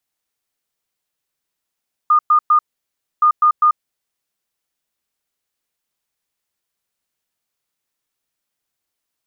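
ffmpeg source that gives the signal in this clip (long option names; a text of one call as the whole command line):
ffmpeg -f lavfi -i "aevalsrc='0.376*sin(2*PI*1220*t)*clip(min(mod(mod(t,1.12),0.2),0.09-mod(mod(t,1.12),0.2))/0.005,0,1)*lt(mod(t,1.12),0.6)':duration=2.24:sample_rate=44100" out.wav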